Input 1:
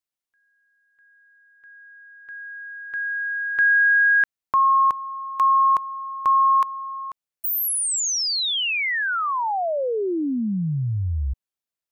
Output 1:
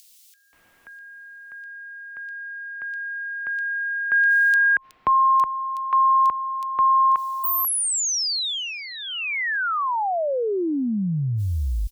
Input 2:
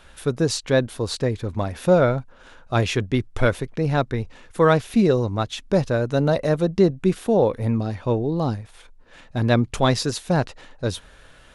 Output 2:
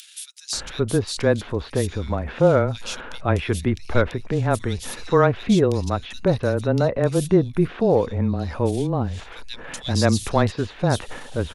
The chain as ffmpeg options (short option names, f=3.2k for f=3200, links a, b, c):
-filter_complex "[0:a]acompressor=mode=upward:threshold=-23dB:ratio=2.5:attack=2.8:release=36:knee=2.83:detection=peak,afreqshift=-16,acrossover=split=2900[a][b];[a]adelay=530[c];[c][b]amix=inputs=2:normalize=0"